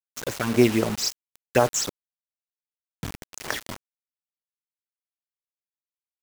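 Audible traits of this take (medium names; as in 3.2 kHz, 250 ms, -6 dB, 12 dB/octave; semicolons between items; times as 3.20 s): phasing stages 8, 3.8 Hz, lowest notch 550–4000 Hz; random-step tremolo 3.7 Hz, depth 80%; a quantiser's noise floor 6-bit, dither none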